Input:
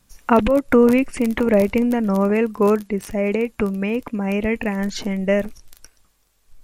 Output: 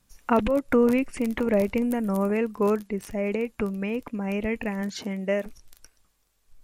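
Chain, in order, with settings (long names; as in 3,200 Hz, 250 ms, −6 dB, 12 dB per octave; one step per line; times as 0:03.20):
0:01.82–0:02.35: high shelf with overshoot 7,000 Hz +6.5 dB, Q 1.5
0:04.81–0:05.45: high-pass filter 70 Hz → 260 Hz
level −6.5 dB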